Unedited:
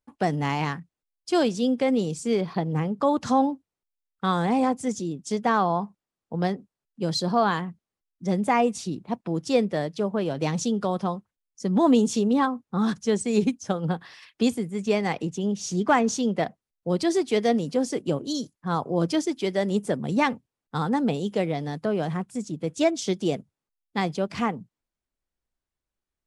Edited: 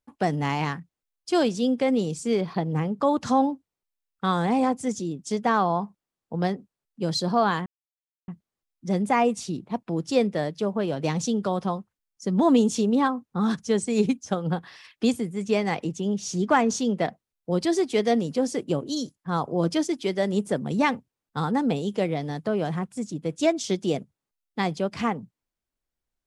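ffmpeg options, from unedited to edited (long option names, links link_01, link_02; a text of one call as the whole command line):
ffmpeg -i in.wav -filter_complex "[0:a]asplit=2[link_01][link_02];[link_01]atrim=end=7.66,asetpts=PTS-STARTPTS,afade=type=out:start_time=7.656:duration=0.004:curve=hsin,apad=pad_dur=0.62[link_03];[link_02]atrim=start=7.66,asetpts=PTS-STARTPTS,afade=type=in:duration=0.004:curve=hsin[link_04];[link_03][link_04]concat=n=2:v=0:a=1" out.wav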